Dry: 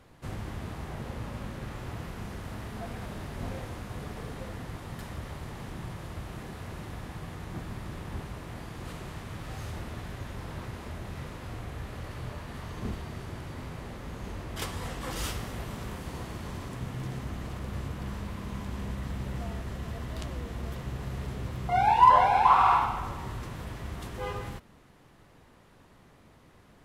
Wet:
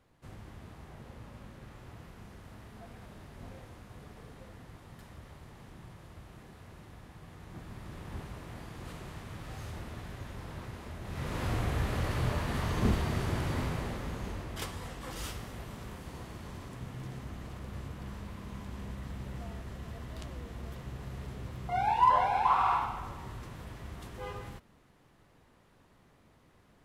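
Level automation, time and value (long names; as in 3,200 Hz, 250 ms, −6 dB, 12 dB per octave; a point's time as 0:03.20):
0:07.15 −11 dB
0:08.17 −4 dB
0:11.00 −4 dB
0:11.40 +7.5 dB
0:13.57 +7.5 dB
0:14.87 −6 dB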